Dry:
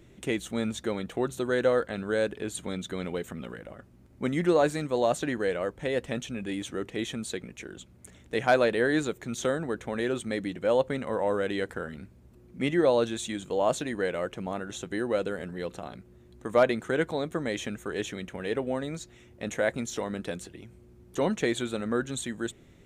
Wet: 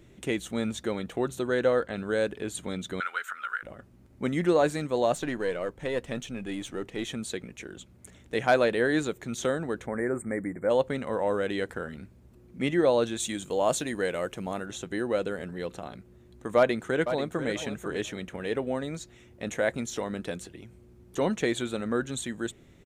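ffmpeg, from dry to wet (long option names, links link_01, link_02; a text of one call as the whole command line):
ffmpeg -i in.wav -filter_complex "[0:a]asettb=1/sr,asplit=3[link_01][link_02][link_03];[link_01]atrim=end=1.414[link_04];[link_02]atrim=start=1.41:end=1.97,asetpts=PTS-STARTPTS,afade=type=in:duration=0.004:curve=qsin,afade=type=out:start_time=0.556:duration=0.004:curve=qsin,highshelf=frequency=8400:gain=-6.5[link_05];[link_03]atrim=start=1.966[link_06];[link_04][link_05]acrossfade=duration=0.004:curve1=hsin:curve2=qsin[link_07];[link_07][link_06]acrossfade=duration=0.004:curve1=qsin:curve2=hsin,asettb=1/sr,asplit=3[link_08][link_09][link_10];[link_08]atrim=end=3.004[link_11];[link_09]atrim=start=3:end=3.63,asetpts=PTS-STARTPTS,afade=type=in:duration=0.004:curve=qsin,afade=type=out:start_time=0.626:duration=0.004:curve=qsin,highpass=frequency=1400:width_type=q:width=13[link_12];[link_10]atrim=start=3.626[link_13];[link_11][link_12]acrossfade=duration=0.004:curve1=hsin:curve2=qsin[link_14];[link_14][link_13]acrossfade=duration=0.004:curve1=qsin:curve2=hsin,asettb=1/sr,asplit=3[link_15][link_16][link_17];[link_15]atrim=end=5.154[link_18];[link_16]atrim=start=5.15:end=7.07,asetpts=PTS-STARTPTS,afade=type=in:duration=0.004:curve=qsin,afade=type=out:start_time=1.916:duration=0.004:curve=qsin,aeval=exprs='if(lt(val(0),0),0.708*val(0),val(0))':channel_layout=same[link_19];[link_17]atrim=start=7.066[link_20];[link_18][link_19]acrossfade=duration=0.004:curve1=hsin:curve2=qsin[link_21];[link_21][link_20]acrossfade=duration=0.004:curve1=qsin:curve2=hsin,asplit=3[link_22][link_23][link_24];[link_22]afade=type=out:start_time=9.86:duration=0.02[link_25];[link_23]asuperstop=centerf=4100:order=20:qfactor=0.8,afade=type=in:start_time=9.86:duration=0.02,afade=type=out:start_time=10.69:duration=0.02[link_26];[link_24]afade=type=in:start_time=10.69:duration=0.02[link_27];[link_25][link_26][link_27]amix=inputs=3:normalize=0,asettb=1/sr,asplit=3[link_28][link_29][link_30];[link_28]atrim=end=13.204[link_31];[link_29]atrim=start=13.2:end=14.66,asetpts=PTS-STARTPTS,afade=type=in:duration=0.004:curve=qsin,afade=type=out:start_time=1.456:duration=0.004:curve=qsin,highshelf=frequency=5900:gain=9.5[link_32];[link_30]atrim=start=14.656[link_33];[link_31][link_32]acrossfade=duration=0.004:curve1=hsin:curve2=qsin[link_34];[link_34][link_33]acrossfade=duration=0.004:curve1=qsin:curve2=hsin,asplit=2[link_35][link_36];[link_36]afade=type=in:start_time=16.57:duration=0.01,afade=type=out:start_time=17.48:duration=0.01,aecho=0:1:490|980|1470:0.316228|0.0632456|0.0126491[link_37];[link_35][link_37]amix=inputs=2:normalize=0" out.wav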